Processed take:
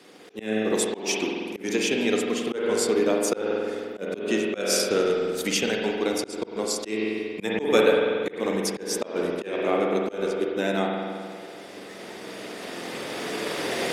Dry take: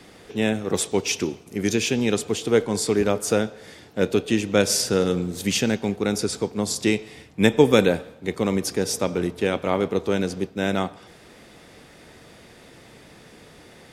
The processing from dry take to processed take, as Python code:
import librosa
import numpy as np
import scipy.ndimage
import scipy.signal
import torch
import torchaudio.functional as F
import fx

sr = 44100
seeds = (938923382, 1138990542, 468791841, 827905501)

p1 = fx.spec_quant(x, sr, step_db=15)
p2 = fx.recorder_agc(p1, sr, target_db=-12.5, rise_db_per_s=7.6, max_gain_db=30)
p3 = scipy.signal.sosfilt(scipy.signal.butter(2, 300.0, 'highpass', fs=sr, output='sos'), p2)
p4 = fx.transient(p3, sr, attack_db=2, sustain_db=-6)
p5 = p4 + fx.echo_bbd(p4, sr, ms=338, stages=1024, feedback_pct=80, wet_db=-19.0, dry=0)
p6 = fx.rev_spring(p5, sr, rt60_s=2.1, pass_ms=(46,), chirp_ms=50, drr_db=0.0)
p7 = fx.auto_swell(p6, sr, attack_ms=184.0)
y = p7 * 10.0 ** (-2.0 / 20.0)